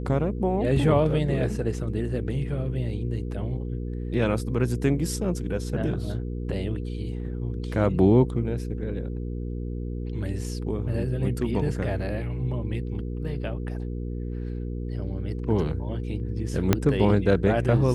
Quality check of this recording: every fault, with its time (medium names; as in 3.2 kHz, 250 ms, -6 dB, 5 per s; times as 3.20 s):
hum 60 Hz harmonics 8 -31 dBFS
16.73 s: pop -5 dBFS